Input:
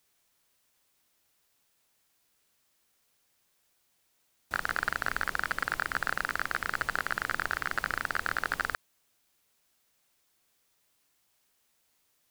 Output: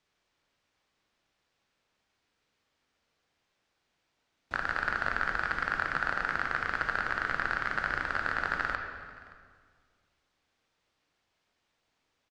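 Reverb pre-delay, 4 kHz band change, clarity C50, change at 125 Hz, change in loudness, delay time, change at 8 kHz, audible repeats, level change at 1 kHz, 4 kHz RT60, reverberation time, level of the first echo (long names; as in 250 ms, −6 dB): 16 ms, −3.0 dB, 4.5 dB, +2.0 dB, +0.5 dB, 572 ms, below −10 dB, 1, +1.0 dB, 1.6 s, 1.9 s, −22.0 dB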